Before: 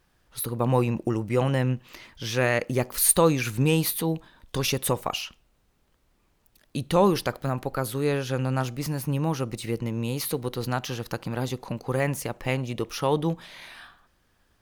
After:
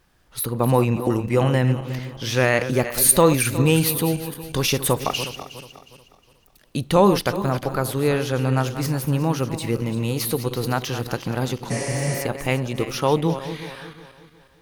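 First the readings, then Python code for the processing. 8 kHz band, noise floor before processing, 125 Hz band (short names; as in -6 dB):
+5.0 dB, -67 dBFS, +5.0 dB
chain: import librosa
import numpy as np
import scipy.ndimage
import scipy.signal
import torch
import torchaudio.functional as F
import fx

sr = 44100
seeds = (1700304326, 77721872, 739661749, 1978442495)

y = fx.reverse_delay_fb(x, sr, ms=181, feedback_pct=58, wet_db=-11)
y = fx.spec_repair(y, sr, seeds[0], start_s=11.73, length_s=0.46, low_hz=250.0, high_hz=11000.0, source='after')
y = y * librosa.db_to_amplitude(4.5)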